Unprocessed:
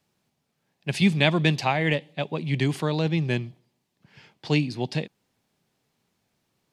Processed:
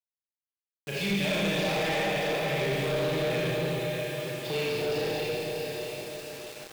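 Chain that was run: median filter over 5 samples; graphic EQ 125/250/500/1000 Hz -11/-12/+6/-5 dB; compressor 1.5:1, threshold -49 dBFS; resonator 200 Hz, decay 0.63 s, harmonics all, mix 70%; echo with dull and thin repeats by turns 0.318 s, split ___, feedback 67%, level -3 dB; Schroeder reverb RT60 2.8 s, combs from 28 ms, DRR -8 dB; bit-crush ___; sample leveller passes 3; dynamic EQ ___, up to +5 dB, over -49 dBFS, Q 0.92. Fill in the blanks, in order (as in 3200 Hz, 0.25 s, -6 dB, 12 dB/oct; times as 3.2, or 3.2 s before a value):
840 Hz, 9-bit, 140 Hz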